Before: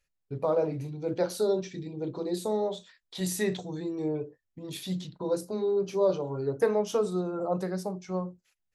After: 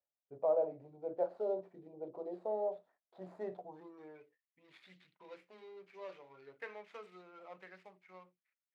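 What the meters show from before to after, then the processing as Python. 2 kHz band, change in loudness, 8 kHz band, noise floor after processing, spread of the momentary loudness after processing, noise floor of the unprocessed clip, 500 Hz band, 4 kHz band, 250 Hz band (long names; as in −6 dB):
−12.0 dB, −9.5 dB, below −35 dB, below −85 dBFS, 21 LU, −81 dBFS, −11.0 dB, −24.5 dB, −20.5 dB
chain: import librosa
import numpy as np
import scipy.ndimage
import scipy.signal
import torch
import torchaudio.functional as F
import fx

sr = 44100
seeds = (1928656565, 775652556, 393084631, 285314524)

y = scipy.ndimage.median_filter(x, 15, mode='constant')
y = fx.filter_sweep_bandpass(y, sr, from_hz=660.0, to_hz=2200.0, start_s=3.61, end_s=4.26, q=3.4)
y = y * librosa.db_to_amplitude(-1.0)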